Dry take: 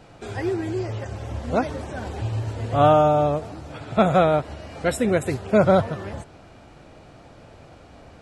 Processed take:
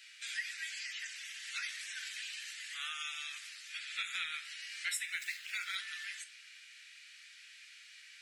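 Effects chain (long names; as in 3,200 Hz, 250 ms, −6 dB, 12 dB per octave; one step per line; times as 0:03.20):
0:05.05–0:05.76: running median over 5 samples
Butterworth high-pass 1,800 Hz 48 dB per octave
0:02.40–0:03.01: dynamic equaliser 3,200 Hz, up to −6 dB, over −50 dBFS, Q 0.78
downward compressor 2.5 to 1, threshold −41 dBFS, peak gain reduction 8.5 dB
soft clipping −28 dBFS, distortion −27 dB
rectangular room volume 550 cubic metres, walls furnished, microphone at 0.86 metres
level +4 dB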